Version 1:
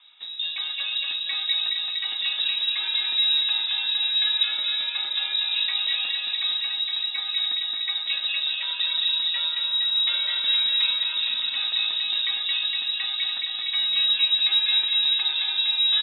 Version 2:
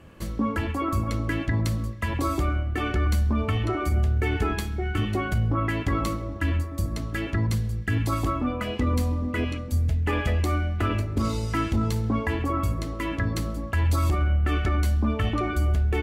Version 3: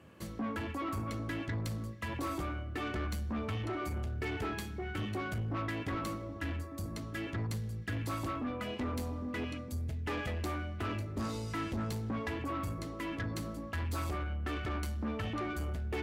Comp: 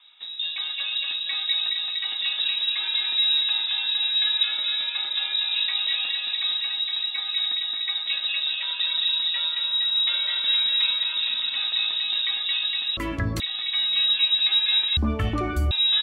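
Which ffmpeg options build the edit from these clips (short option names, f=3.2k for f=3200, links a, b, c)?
-filter_complex "[1:a]asplit=2[a][b];[0:a]asplit=3[c][d][e];[c]atrim=end=12.972[f];[a]atrim=start=12.968:end=13.402[g];[d]atrim=start=13.398:end=14.972[h];[b]atrim=start=14.968:end=15.712[i];[e]atrim=start=15.708[j];[f][g]acrossfade=d=0.004:c1=hsin:c2=hsin[k];[k][h]acrossfade=d=0.004:c1=hsin:c2=hsin[l];[l][i]acrossfade=d=0.004:c1=hsin:c2=hsin[m];[m][j]acrossfade=d=0.004:c1=hsin:c2=hsin"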